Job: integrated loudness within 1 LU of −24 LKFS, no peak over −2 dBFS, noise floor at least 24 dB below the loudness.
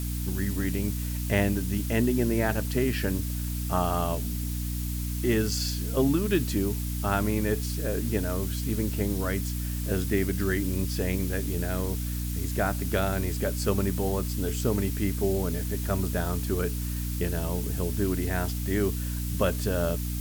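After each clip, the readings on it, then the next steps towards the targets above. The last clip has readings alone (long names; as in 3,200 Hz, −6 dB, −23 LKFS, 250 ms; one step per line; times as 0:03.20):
mains hum 60 Hz; hum harmonics up to 300 Hz; level of the hum −28 dBFS; background noise floor −31 dBFS; target noise floor −52 dBFS; integrated loudness −28.0 LKFS; sample peak −11.0 dBFS; target loudness −24.0 LKFS
→ mains-hum notches 60/120/180/240/300 Hz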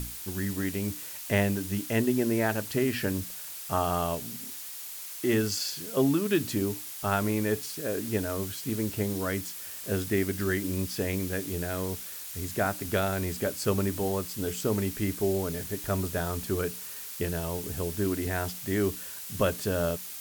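mains hum none found; background noise floor −40 dBFS; target noise floor −54 dBFS
→ noise reduction from a noise print 14 dB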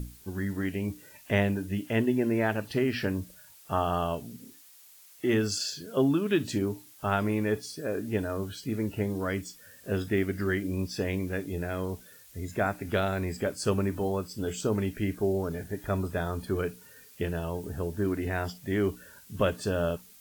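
background noise floor −54 dBFS; target noise floor −55 dBFS
→ noise reduction from a noise print 6 dB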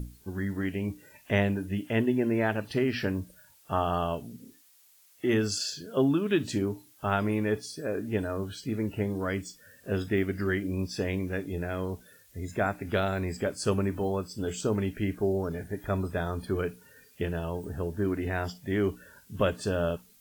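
background noise floor −60 dBFS; integrated loudness −30.5 LKFS; sample peak −13.0 dBFS; target loudness −24.0 LKFS
→ level +6.5 dB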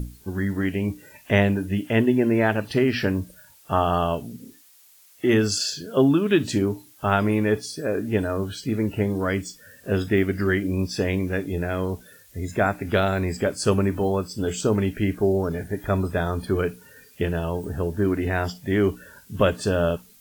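integrated loudness −24.0 LKFS; sample peak −6.5 dBFS; background noise floor −53 dBFS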